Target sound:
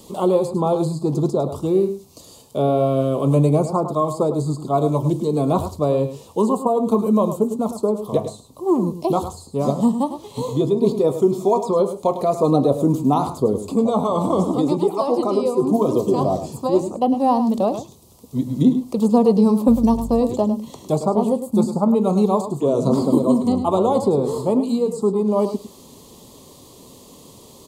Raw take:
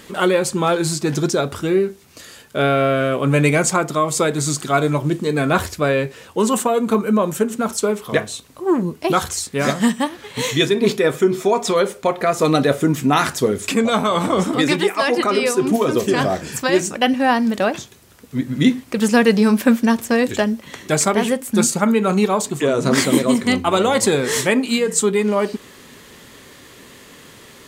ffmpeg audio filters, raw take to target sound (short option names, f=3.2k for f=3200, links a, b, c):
-filter_complex "[0:a]acrossover=split=290|3500[a][b][c];[b]asuperstop=centerf=2300:order=12:qfactor=0.63[d];[c]acompressor=threshold=-42dB:ratio=6[e];[a][d][e]amix=inputs=3:normalize=0,asettb=1/sr,asplit=3[f][g][h];[f]atrim=end=19.684[i];[g]atrim=start=19.68:end=20.2,asetpts=PTS-STARTPTS,afade=t=in:d=0.004:c=qsin,afade=t=out:st=0.516:d=0.004:c=qsin,aeval=exprs='val(0)+0.0398*(sin(2*PI*50*n/s)+sin(2*PI*2*50*n/s)/2+sin(2*PI*3*50*n/s)/3+sin(2*PI*4*50*n/s)/4+sin(2*PI*5*50*n/s)/5)':c=same[j];[h]atrim=start=20.196[k];[i][j]acrossfade=d=0.004:c1=hsin:c2=qsin[l];[l][k]acrossfade=d=0.004:c1=qsin:c2=hsin,aecho=1:1:104:0.299"